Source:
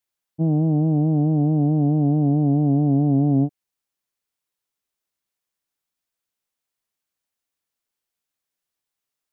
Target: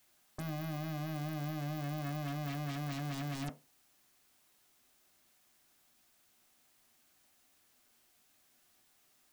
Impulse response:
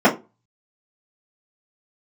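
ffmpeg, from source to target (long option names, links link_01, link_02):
-filter_complex "[0:a]aeval=exprs='(tanh(89.1*val(0)+0.55)-tanh(0.55))/89.1':channel_layout=same,aeval=exprs='0.0178*sin(PI/2*5.62*val(0)/0.0178)':channel_layout=same,asplit=2[link_01][link_02];[1:a]atrim=start_sample=2205[link_03];[link_02][link_03]afir=irnorm=-1:irlink=0,volume=-29dB[link_04];[link_01][link_04]amix=inputs=2:normalize=0,volume=-1.5dB"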